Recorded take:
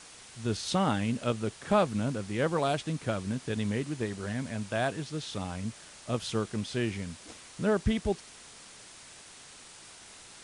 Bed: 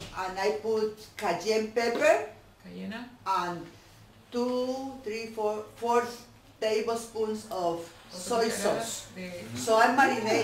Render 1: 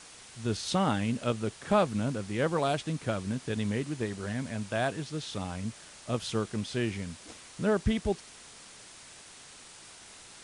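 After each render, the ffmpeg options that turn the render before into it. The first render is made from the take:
-af anull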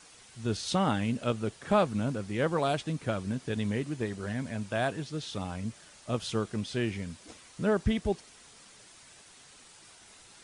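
-af "afftdn=nr=6:nf=-51"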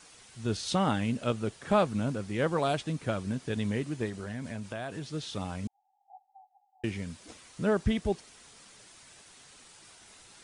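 -filter_complex "[0:a]asettb=1/sr,asplit=3[a][b][c];[a]atrim=end=4.094[d];[b]atrim=start=4.09:end=5.12,asetpts=PTS-STARTPTS,afade=t=in:d=0.004:c=qsin,afade=t=out:st=1.026:d=0.004:c=qsin,acompressor=threshold=-33dB:ratio=6:attack=3.2:release=140:knee=1:detection=peak[e];[c]atrim=start=5.116[f];[d][e]acrossfade=d=0.004:c1=hsin:c2=qsin[g];[g][f]acrossfade=d=0.004:c1=qsin:c2=hsin,asettb=1/sr,asplit=3[h][i][j];[h]atrim=end=5.674[k];[i]atrim=start=5.67:end=6.84,asetpts=PTS-STARTPTS,afade=t=in:d=0.004:c=qsin,afade=t=out:st=1.166:d=0.004:c=qsin,asuperpass=centerf=790:order=8:qfactor=7.5[l];[j]atrim=start=6.836[m];[k][l]acrossfade=d=0.004:c1=hsin:c2=qsin[n];[n][m]acrossfade=d=0.004:c1=qsin:c2=hsin"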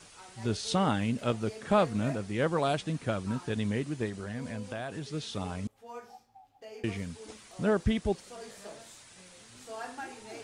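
-filter_complex "[1:a]volume=-19dB[a];[0:a][a]amix=inputs=2:normalize=0"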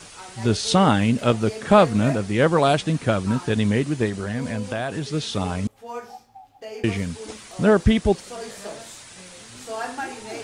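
-af "volume=10.5dB"

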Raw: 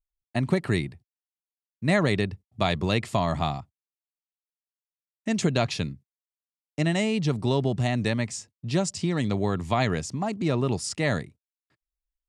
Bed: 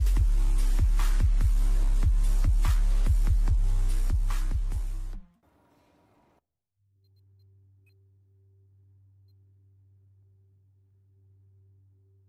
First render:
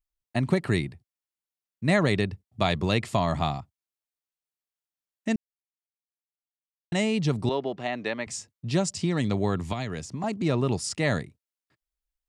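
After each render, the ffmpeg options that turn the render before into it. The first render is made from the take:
-filter_complex "[0:a]asettb=1/sr,asplit=3[a][b][c];[a]atrim=end=7.494[d];[b]atrim=start=7.49:end=8.27,asetpts=PTS-STARTPTS,afade=t=in:d=0.004:c=qsin,afade=t=out:st=0.776:d=0.004:c=qsin,highpass=370,lowpass=3.2k[e];[c]atrim=start=8.266[f];[d][e]acrossfade=d=0.004:c1=hsin:c2=qsin[g];[g][f]acrossfade=d=0.004:c1=qsin:c2=hsin,asettb=1/sr,asplit=3[h][i][j];[h]atrim=end=9.724[k];[i]atrim=start=9.72:end=10.24,asetpts=PTS-STARTPTS,afade=t=in:d=0.004:c=qsin,afade=t=out:st=0.516:d=0.004:c=qsin,acrossover=split=400|2600[l][m][n];[l]acompressor=threshold=-32dB:ratio=4[o];[m]acompressor=threshold=-36dB:ratio=4[p];[n]acompressor=threshold=-41dB:ratio=4[q];[o][p][q]amix=inputs=3:normalize=0[r];[j]atrim=start=10.236[s];[k][r]acrossfade=d=0.004:c1=hsin:c2=qsin[t];[t][s]acrossfade=d=0.004:c1=qsin:c2=hsin,asplit=3[u][v][w];[u]atrim=end=5.36,asetpts=PTS-STARTPTS,afade=t=out:st=5.356:d=0.004:c=hsin[x];[v]atrim=start=5.36:end=6.92,asetpts=PTS-STARTPTS,volume=0[y];[w]atrim=start=6.92,asetpts=PTS-STARTPTS,afade=t=in:d=0.004:c=hsin[z];[x][y][z]concat=n=3:v=0:a=1"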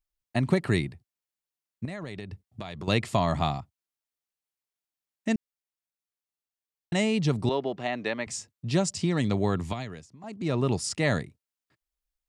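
-filter_complex "[0:a]asettb=1/sr,asplit=3[a][b][c];[a]atrim=end=1.854[d];[b]atrim=start=1.85:end=2.88,asetpts=PTS-STARTPTS,afade=t=in:d=0.004:c=qsin,afade=t=out:st=1.026:d=0.004:c=qsin,acompressor=threshold=-33dB:ratio=12:attack=3.2:release=140:knee=1:detection=peak[e];[c]atrim=start=2.876[f];[d][e]acrossfade=d=0.004:c1=hsin:c2=qsin[g];[g][f]acrossfade=d=0.004:c1=qsin:c2=hsin,asplit=3[h][i][j];[h]atrim=end=10.08,asetpts=PTS-STARTPTS,afade=t=out:st=9.64:d=0.44:silence=0.149624[k];[i]atrim=start=10.08:end=10.21,asetpts=PTS-STARTPTS,volume=-16.5dB[l];[j]atrim=start=10.21,asetpts=PTS-STARTPTS,afade=t=in:d=0.44:silence=0.149624[m];[k][l][m]concat=n=3:v=0:a=1"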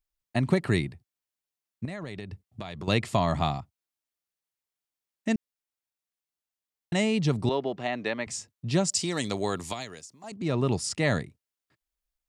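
-filter_complex "[0:a]asettb=1/sr,asplit=3[a][b][c];[a]atrim=end=8.894[d];[b]atrim=start=8.89:end=10.32,asetpts=PTS-STARTPTS,afade=t=in:d=0.004:c=qsin,afade=t=out:st=1.426:d=0.004:c=qsin,bass=f=250:g=-10,treble=f=4k:g=12[e];[c]atrim=start=10.316[f];[d][e]acrossfade=d=0.004:c1=hsin:c2=qsin[g];[g][f]acrossfade=d=0.004:c1=qsin:c2=hsin"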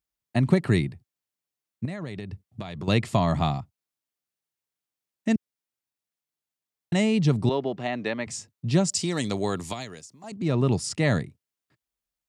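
-af "highpass=100,lowshelf=f=220:g=8"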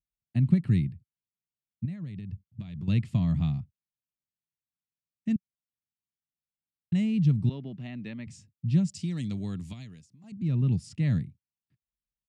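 -af "firequalizer=gain_entry='entry(180,0);entry(390,-18);entry(760,-23);entry(1500,-18);entry(2600,-11);entry(4000,-15);entry(6600,-18)':delay=0.05:min_phase=1"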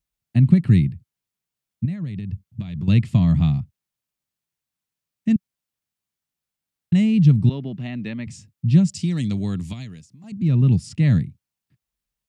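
-af "volume=9dB,alimiter=limit=-3dB:level=0:latency=1"

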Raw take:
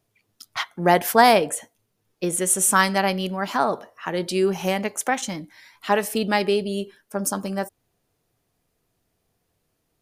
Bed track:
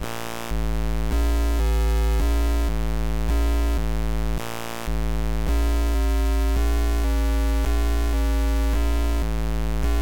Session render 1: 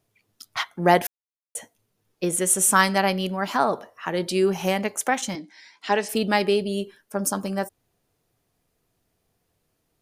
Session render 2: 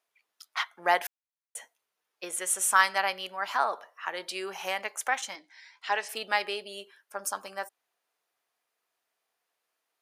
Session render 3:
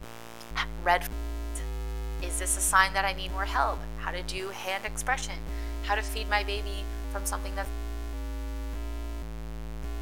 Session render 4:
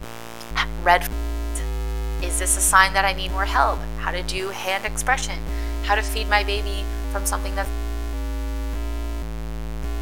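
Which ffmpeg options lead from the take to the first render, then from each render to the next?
-filter_complex "[0:a]asettb=1/sr,asplit=3[a][b][c];[a]atrim=end=5.354[d];[b]atrim=start=5.35:end=6.09,asetpts=PTS-STARTPTS,afade=t=in:d=0.004:c=qsin,afade=t=out:st=0.736:d=0.004:c=qsin,highpass=f=210:w=0.5412,highpass=f=210:w=1.3066,equalizer=f=570:t=q:w=4:g=-4,equalizer=f=1.2k:t=q:w=4:g=-8,equalizer=f=5k:t=q:w=4:g=5,lowpass=f=7.8k:w=0.5412,lowpass=f=7.8k:w=1.3066[e];[c]atrim=start=6.086[f];[d][e]acrossfade=d=0.004:c1=hsin:c2=qsin[g];[g][f]acrossfade=d=0.004:c1=qsin:c2=hsin,asplit=3[h][i][j];[h]atrim=end=1.07,asetpts=PTS-STARTPTS,afade=t=out:st=1.066:d=0.004:c=hsin[k];[i]atrim=start=1.07:end=1.55,asetpts=PTS-STARTPTS,volume=0[l];[j]atrim=start=1.55,asetpts=PTS-STARTPTS,afade=t=in:d=0.004:c=hsin[m];[k][l][m]concat=n=3:v=0:a=1"
-af "highpass=1k,highshelf=f=3.4k:g=-8.5"
-filter_complex "[1:a]volume=-13.5dB[a];[0:a][a]amix=inputs=2:normalize=0"
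-af "volume=8dB,alimiter=limit=-1dB:level=0:latency=1"

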